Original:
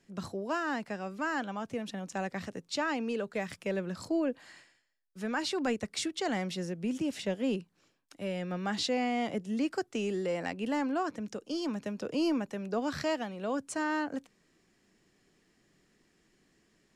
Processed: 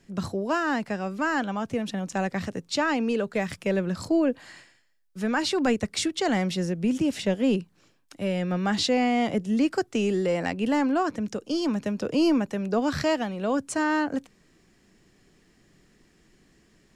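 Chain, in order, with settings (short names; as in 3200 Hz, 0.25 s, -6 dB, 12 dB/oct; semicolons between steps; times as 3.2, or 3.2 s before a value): low shelf 130 Hz +8.5 dB; gain +6.5 dB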